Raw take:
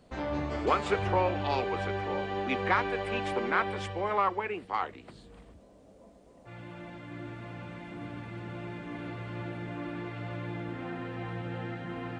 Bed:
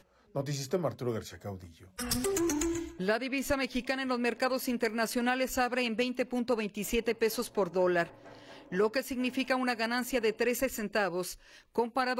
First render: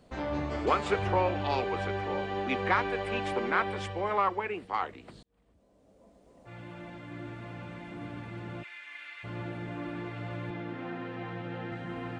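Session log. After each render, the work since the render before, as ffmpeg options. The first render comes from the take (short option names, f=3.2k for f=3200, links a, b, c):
-filter_complex "[0:a]asplit=3[a][b][c];[a]afade=t=out:st=8.62:d=0.02[d];[b]highpass=f=2.1k:t=q:w=2,afade=t=in:st=8.62:d=0.02,afade=t=out:st=9.23:d=0.02[e];[c]afade=t=in:st=9.23:d=0.02[f];[d][e][f]amix=inputs=3:normalize=0,asettb=1/sr,asplit=3[g][h][i];[g]atrim=end=10.504[j];[h]atrim=start=10.5:end=11.72,asetpts=PTS-STARTPTS,afade=t=in:d=0.004:c=qsin,afade=t=out:st=1.216:d=0.004:c=qsin,highpass=130,lowpass=5.6k[k];[i]atrim=start=11.716[l];[j][k]acrossfade=d=0.004:c1=hsin:c2=qsin[m];[m][l]acrossfade=d=0.004:c1=qsin:c2=hsin,asplit=2[n][o];[n]atrim=end=5.23,asetpts=PTS-STARTPTS,afade=t=out:st=5.226:d=0.004:c=hsin[p];[o]atrim=start=5.23,asetpts=PTS-STARTPTS,afade=t=in:d=1.31[q];[p][q]concat=n=2:v=0:a=1"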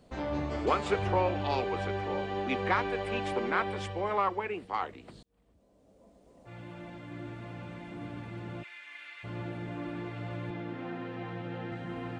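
-af "equalizer=f=1.6k:t=o:w=1.6:g=-2.5"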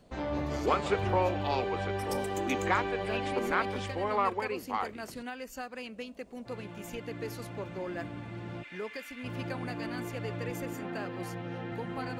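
-filter_complex "[1:a]volume=-11dB[a];[0:a][a]amix=inputs=2:normalize=0"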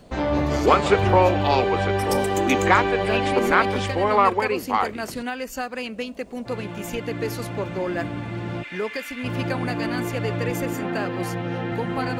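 -af "volume=11dB"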